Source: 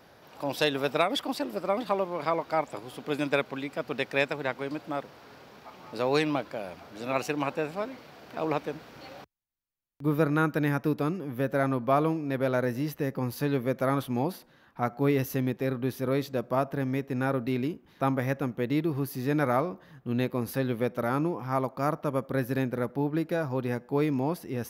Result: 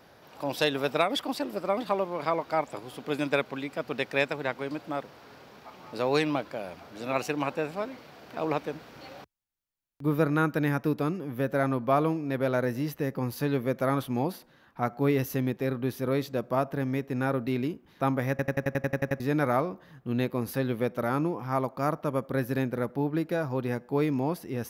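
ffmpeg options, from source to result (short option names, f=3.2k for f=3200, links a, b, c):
-filter_complex "[0:a]asplit=11[a][b][c][d][e][f][g][h][i][j][k];[a]atrim=end=18.392[l];[b]atrim=start=18.298:end=18.392[m];[c]atrim=start=18.298:end=18.392[n];[d]atrim=start=18.298:end=18.392[o];[e]atrim=start=18.298:end=18.392[p];[f]atrim=start=18.298:end=18.392[q];[g]atrim=start=18.298:end=18.392[r];[h]atrim=start=18.298:end=18.392[s];[i]atrim=start=18.298:end=18.392[t];[j]atrim=start=18.298:end=18.392[u];[k]atrim=start=19.198[v];[l][m]acrossfade=d=0.004:c1=hsin:c2=hsin[w];[w][n]acrossfade=d=0.004:c1=hsin:c2=hsin[x];[x][o]acrossfade=d=0.004:c1=hsin:c2=hsin[y];[y][p]acrossfade=d=0.004:c1=hsin:c2=hsin[z];[z][q]acrossfade=d=0.004:c1=hsin:c2=hsin[aa];[aa][r]acrossfade=d=0.004:c1=hsin:c2=hsin[ab];[ab][s]acrossfade=d=0.004:c1=hsin:c2=hsin[ac];[ac][t]acrossfade=d=0.004:c1=hsin:c2=hsin[ad];[ad][u]acrossfade=d=0.004:c1=hsin:c2=hsin[ae];[ae][v]acrossfade=d=0.004:c1=hsin:c2=hsin"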